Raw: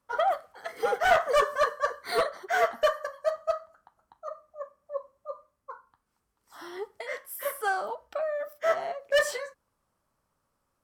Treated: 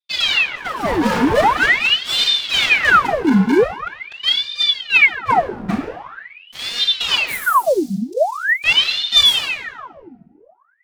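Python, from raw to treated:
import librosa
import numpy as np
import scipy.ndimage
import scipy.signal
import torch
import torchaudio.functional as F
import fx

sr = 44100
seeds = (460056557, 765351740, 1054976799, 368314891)

y = fx.lower_of_two(x, sr, delay_ms=4.2)
y = fx.dmg_buzz(y, sr, base_hz=60.0, harmonics=8, level_db=-57.0, tilt_db=0, odd_only=False, at=(5.3, 5.72), fade=0.02)
y = fx.low_shelf(y, sr, hz=470.0, db=10.5)
y = fx.leveller(y, sr, passes=5)
y = fx.rider(y, sr, range_db=5, speed_s=2.0)
y = fx.cheby2_bandstop(y, sr, low_hz=140.0, high_hz=1300.0, order=4, stop_db=70, at=(7.32, 8.64))
y = fx.room_shoebox(y, sr, seeds[0], volume_m3=790.0, walls='mixed', distance_m=1.8)
y = fx.ring_lfo(y, sr, carrier_hz=1900.0, swing_pct=90, hz=0.44)
y = y * 10.0 ** (-7.5 / 20.0)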